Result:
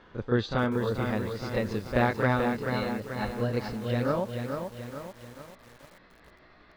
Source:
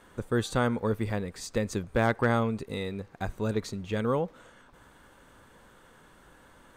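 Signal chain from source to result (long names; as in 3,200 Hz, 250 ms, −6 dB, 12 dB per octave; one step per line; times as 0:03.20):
pitch glide at a constant tempo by +3.5 semitones starting unshifted
Butterworth low-pass 5,100 Hz 36 dB per octave
backwards echo 33 ms −7 dB
feedback echo at a low word length 435 ms, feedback 55%, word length 8 bits, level −5.5 dB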